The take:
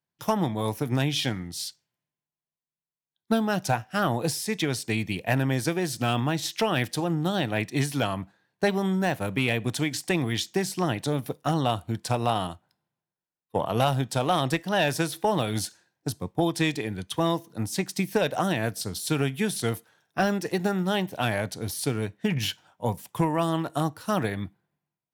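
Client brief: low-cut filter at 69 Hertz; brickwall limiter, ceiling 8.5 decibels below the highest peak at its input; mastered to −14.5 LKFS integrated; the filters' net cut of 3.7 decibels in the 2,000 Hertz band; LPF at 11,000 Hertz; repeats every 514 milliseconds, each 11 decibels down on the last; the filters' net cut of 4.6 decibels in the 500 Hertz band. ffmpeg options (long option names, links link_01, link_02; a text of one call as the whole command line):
ffmpeg -i in.wav -af "highpass=69,lowpass=11000,equalizer=frequency=500:width_type=o:gain=-6,equalizer=frequency=2000:width_type=o:gain=-4.5,alimiter=limit=-22.5dB:level=0:latency=1,aecho=1:1:514|1028|1542:0.282|0.0789|0.0221,volume=18.5dB" out.wav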